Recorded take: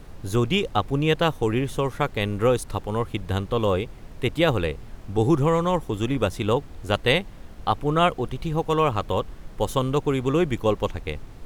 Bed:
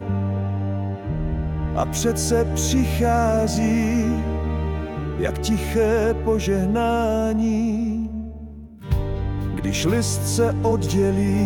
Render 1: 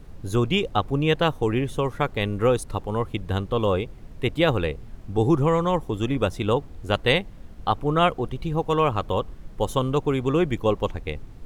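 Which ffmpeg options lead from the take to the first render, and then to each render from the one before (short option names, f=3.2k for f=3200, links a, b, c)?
-af "afftdn=nr=6:nf=-42"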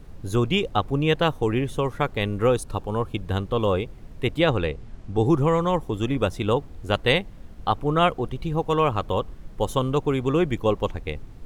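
-filter_complex "[0:a]asettb=1/sr,asplit=3[a][b][c];[a]atrim=end=2.564[d];[b]atrim=start=2.56:end=3.22,asetpts=PTS-STARTPTS,afade=t=in:d=0.004:c=qsin,afade=t=out:st=0.656:d=0.004:c=qsin,asuperstop=centerf=2000:order=8:qfactor=7.6[e];[c]atrim=start=3.216[f];[d][e]acrossfade=d=0.004:c1=hsin:c2=qsin[g];[g][f]acrossfade=d=0.004:c1=qsin:c2=hsin,asettb=1/sr,asplit=3[h][i][j];[h]atrim=end=4.414[k];[i]atrim=start=4.41:end=5.26,asetpts=PTS-STARTPTS,afade=t=in:d=0.004:c=qsin,afade=t=out:st=0.846:d=0.004:c=qsin,lowpass=8.5k[l];[j]atrim=start=5.256[m];[k][l]acrossfade=d=0.004:c1=hsin:c2=qsin[n];[n][m]acrossfade=d=0.004:c1=qsin:c2=hsin"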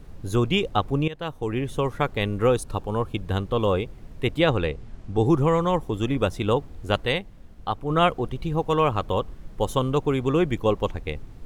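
-filter_complex "[0:a]asplit=4[a][b][c][d];[a]atrim=end=1.08,asetpts=PTS-STARTPTS,afade=t=out:st=1.076:d=0.004:c=hsin:silence=0.112202[e];[b]atrim=start=1.08:end=7.062,asetpts=PTS-STARTPTS,afade=t=in:d=0.73:silence=0.112202[f];[c]atrim=start=7.058:end=7.902,asetpts=PTS-STARTPTS,volume=-4.5dB[g];[d]atrim=start=7.898[h];[e][f]concat=n=2:v=0:a=1[i];[i][g]acrossfade=d=0.004:c1=hsin:c2=hsin[j];[j][h]acrossfade=d=0.004:c1=hsin:c2=hsin"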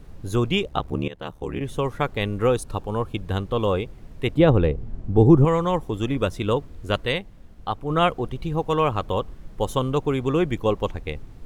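-filter_complex "[0:a]asplit=3[a][b][c];[a]afade=t=out:st=0.63:d=0.02[d];[b]aeval=exprs='val(0)*sin(2*PI*36*n/s)':c=same,afade=t=in:st=0.63:d=0.02,afade=t=out:st=1.59:d=0.02[e];[c]afade=t=in:st=1.59:d=0.02[f];[d][e][f]amix=inputs=3:normalize=0,asettb=1/sr,asplit=3[g][h][i];[g]atrim=end=4.354[j];[h]atrim=start=4.35:end=5.45,asetpts=PTS-STARTPTS,afade=t=in:d=0.004:c=qsin,afade=t=out:st=1.096:d=0.004:c=qsin,tiltshelf=f=970:g=7.5[k];[i]atrim=start=5.446[l];[j][k]acrossfade=d=0.004:c1=hsin:c2=qsin[m];[m][l]acrossfade=d=0.004:c1=qsin:c2=hsin,asettb=1/sr,asplit=3[n][o][p];[n]atrim=end=6.174[q];[o]atrim=start=6.17:end=7.19,asetpts=PTS-STARTPTS,afade=t=in:d=0.004:c=qsin,afade=t=out:st=1.016:d=0.004:c=qsin,bandreject=f=790:w=6.4[r];[p]atrim=start=7.186[s];[q][r]acrossfade=d=0.004:c1=hsin:c2=qsin[t];[t][s]acrossfade=d=0.004:c1=qsin:c2=hsin"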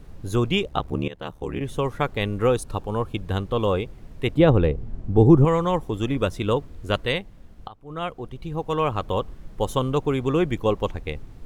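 -filter_complex "[0:a]asplit=2[a][b];[a]atrim=end=7.68,asetpts=PTS-STARTPTS,afade=t=out:st=7.676:d=0.004:c=hsin:silence=0.105925[c];[b]atrim=start=7.68,asetpts=PTS-STARTPTS,afade=t=in:d=1.5:silence=0.105925[d];[c][d]concat=n=2:v=0:a=1"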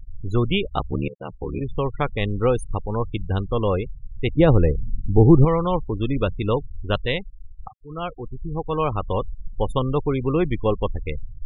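-af "afftfilt=real='re*gte(hypot(re,im),0.0398)':imag='im*gte(hypot(re,im),0.0398)':win_size=1024:overlap=0.75,lowshelf=f=64:g=9.5"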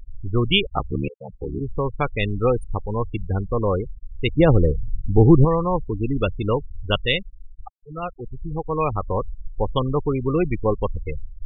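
-af "afftfilt=real='re*gte(hypot(re,im),0.0891)':imag='im*gte(hypot(re,im),0.0891)':win_size=1024:overlap=0.75,equalizer=f=3.4k:t=o:w=1.3:g=9.5"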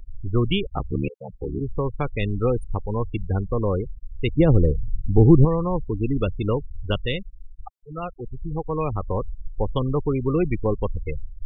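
-filter_complex "[0:a]acrossover=split=460[a][b];[b]acompressor=threshold=-30dB:ratio=2.5[c];[a][c]amix=inputs=2:normalize=0"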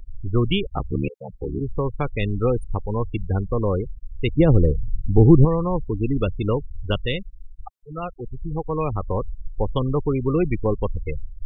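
-af "volume=1dB"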